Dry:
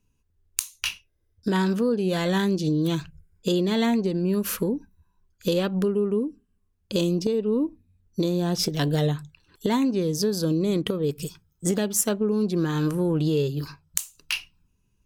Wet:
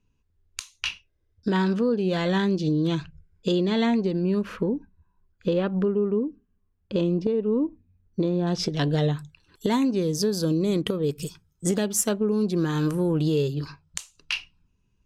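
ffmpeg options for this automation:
-af "asetnsamples=n=441:p=0,asendcmd='4.42 lowpass f 2200;8.47 lowpass f 4900;9.17 lowpass f 12000;13.54 lowpass f 5400',lowpass=4.8k"

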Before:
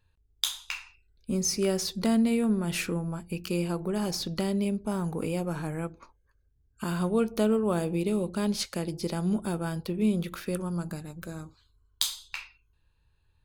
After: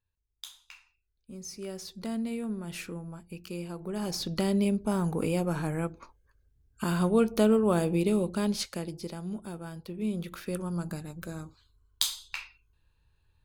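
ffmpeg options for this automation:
-af "volume=11dB,afade=t=in:st=1.32:d=0.97:silence=0.446684,afade=t=in:st=3.75:d=0.8:silence=0.298538,afade=t=out:st=8.07:d=1.13:silence=0.281838,afade=t=in:st=9.82:d=1.13:silence=0.354813"

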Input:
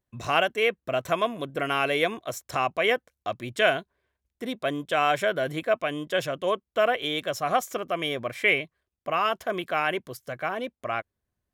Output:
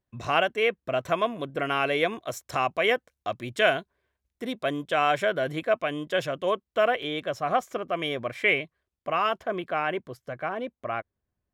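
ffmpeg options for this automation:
-af "asetnsamples=n=441:p=0,asendcmd='2.13 lowpass f 9600;4.85 lowpass f 5500;7.03 lowpass f 2200;7.93 lowpass f 4400;9.38 lowpass f 1700',lowpass=f=4.2k:p=1"

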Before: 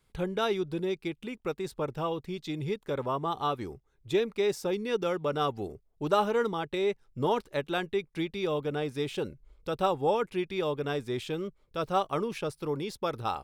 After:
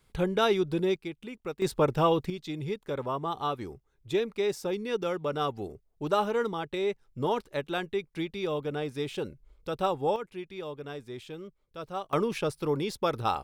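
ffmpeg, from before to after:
-af "asetnsamples=n=441:p=0,asendcmd='0.96 volume volume -3dB;1.62 volume volume 8dB;2.3 volume volume -1dB;10.16 volume volume -8dB;12.13 volume volume 3.5dB',volume=4dB"

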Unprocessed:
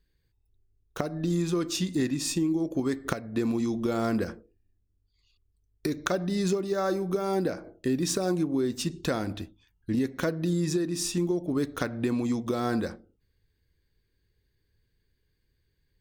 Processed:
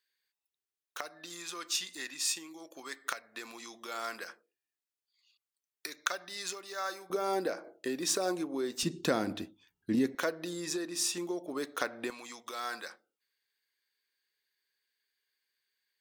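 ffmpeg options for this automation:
-af "asetnsamples=n=441:p=0,asendcmd='7.1 highpass f 480;8.83 highpass f 200;10.15 highpass f 550;12.1 highpass f 1200',highpass=1.2k"

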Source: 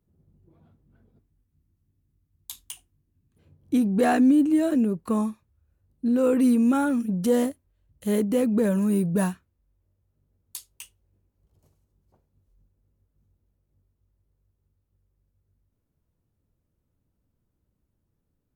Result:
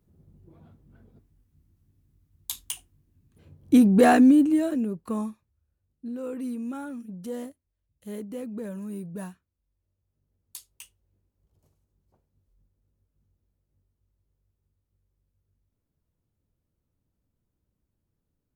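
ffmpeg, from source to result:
-af "volume=15dB,afade=t=out:st=3.88:d=0.88:silence=0.298538,afade=t=out:st=5.26:d=0.91:silence=0.398107,afade=t=in:st=9.3:d=1.39:silence=0.334965"

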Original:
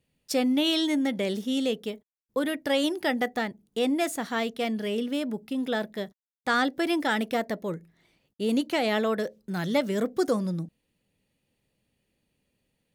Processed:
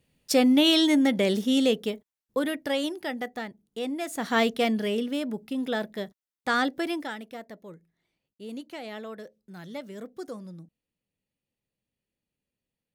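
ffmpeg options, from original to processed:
-af "volume=16.5dB,afade=t=out:st=1.67:d=1.36:silence=0.298538,afade=t=in:st=4.08:d=0.32:silence=0.251189,afade=t=out:st=4.4:d=0.69:silence=0.473151,afade=t=out:st=6.7:d=0.48:silence=0.237137"

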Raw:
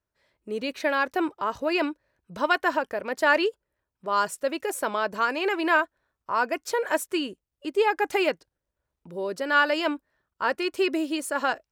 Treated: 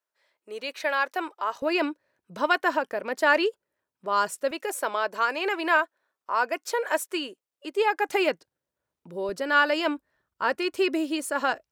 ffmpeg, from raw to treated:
-af "asetnsamples=n=441:p=0,asendcmd='1.62 highpass f 170;4.51 highpass f 380;8.09 highpass f 130;9.29 highpass f 51',highpass=560"

